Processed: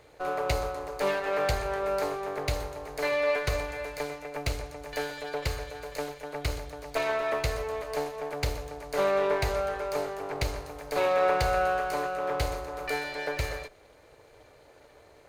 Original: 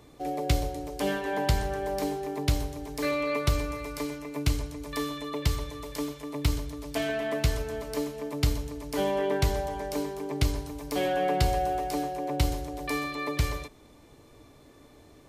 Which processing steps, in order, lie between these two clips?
comb filter that takes the minimum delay 0.45 ms; FFT filter 100 Hz 0 dB, 270 Hz -7 dB, 500 Hz +13 dB, 11 kHz +1 dB; trim -5.5 dB

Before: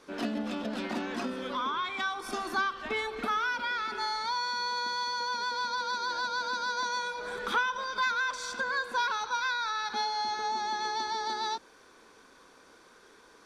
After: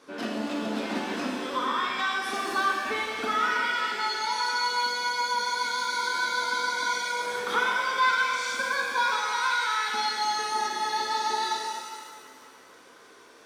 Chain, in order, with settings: high-pass 54 Hz; bass shelf 81 Hz -9 dB; pitch-shifted reverb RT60 1.8 s, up +7 st, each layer -8 dB, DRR -2 dB

